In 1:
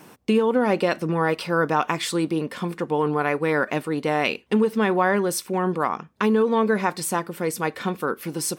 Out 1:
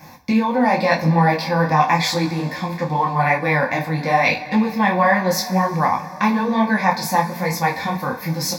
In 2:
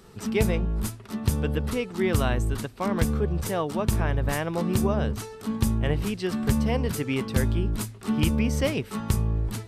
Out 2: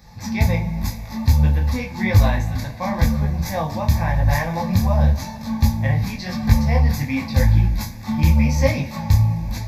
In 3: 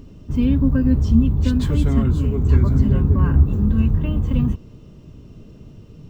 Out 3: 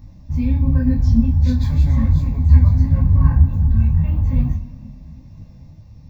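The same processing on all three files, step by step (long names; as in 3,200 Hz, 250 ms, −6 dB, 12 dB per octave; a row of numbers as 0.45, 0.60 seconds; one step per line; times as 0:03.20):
phaser with its sweep stopped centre 2,000 Hz, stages 8
coupled-rooms reverb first 0.26 s, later 3.5 s, from −20 dB, DRR 2.5 dB
micro pitch shift up and down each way 32 cents
normalise the peak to −1.5 dBFS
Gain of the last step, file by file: +11.5, +10.0, +2.5 decibels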